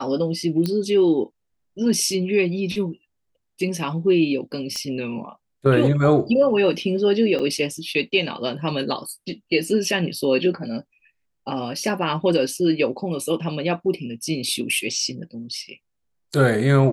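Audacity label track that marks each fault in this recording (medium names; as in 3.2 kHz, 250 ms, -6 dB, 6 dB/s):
0.660000	0.660000	pop -12 dBFS
4.760000	4.760000	pop -15 dBFS
7.390000	7.400000	dropout 5.5 ms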